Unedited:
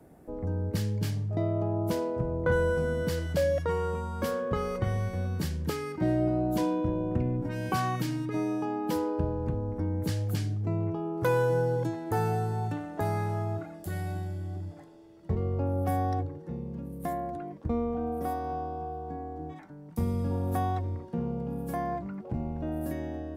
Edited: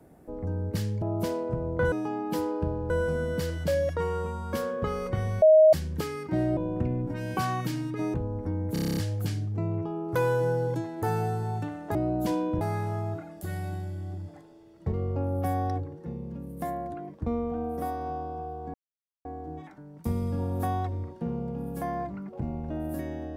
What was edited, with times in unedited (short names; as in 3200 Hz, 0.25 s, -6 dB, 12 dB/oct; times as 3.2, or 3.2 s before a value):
1.02–1.69 cut
5.11–5.42 bleep 627 Hz -12.5 dBFS
6.26–6.92 move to 13.04
8.49–9.47 move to 2.59
10.06 stutter 0.03 s, 9 plays
19.17 insert silence 0.51 s